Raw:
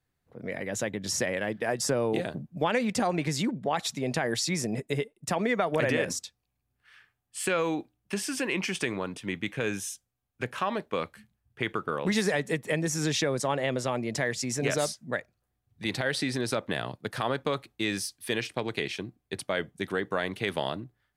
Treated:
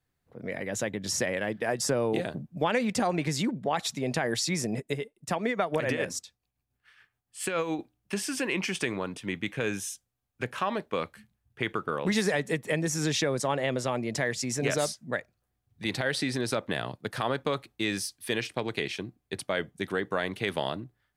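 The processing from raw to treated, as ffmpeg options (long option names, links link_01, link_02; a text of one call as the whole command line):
ffmpeg -i in.wav -filter_complex "[0:a]asettb=1/sr,asplit=3[link_01][link_02][link_03];[link_01]atrim=end=4.774[link_04];[link_02]atrim=start=4.77:end=7.79,asetpts=PTS-STARTPTS,afade=type=in:duration=0.004:curve=qsin,afade=type=out:start_time=3.016:duration=0.004:curve=qsin,tremolo=f=7.1:d=0.54[link_05];[link_03]atrim=start=7.786[link_06];[link_04][link_05]acrossfade=duration=0.004:curve1=hsin:curve2=qsin[link_07];[link_07][link_06]acrossfade=duration=0.004:curve1=qsin:curve2=hsin" out.wav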